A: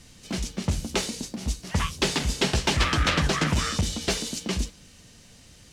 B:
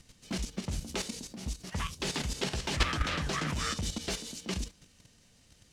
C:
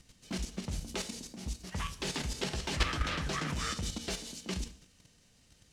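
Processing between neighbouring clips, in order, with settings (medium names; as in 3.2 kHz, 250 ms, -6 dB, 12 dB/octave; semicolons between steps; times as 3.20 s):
level held to a coarse grid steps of 10 dB; trim -2.5 dB
gated-style reverb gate 230 ms falling, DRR 11.5 dB; trim -2.5 dB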